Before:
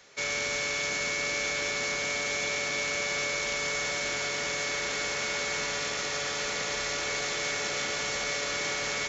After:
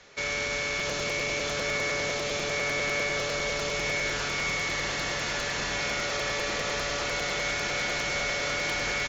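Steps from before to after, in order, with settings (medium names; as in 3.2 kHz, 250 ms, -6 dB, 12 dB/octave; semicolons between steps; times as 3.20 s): distance through air 72 m; delay 679 ms -4.5 dB; in parallel at 0 dB: peak limiter -27 dBFS, peak gain reduction 8.5 dB; on the sum: bass shelf 72 Hz +10.5 dB; crackling interface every 0.10 s, samples 256, repeat, from 0.79 s; trim -2.5 dB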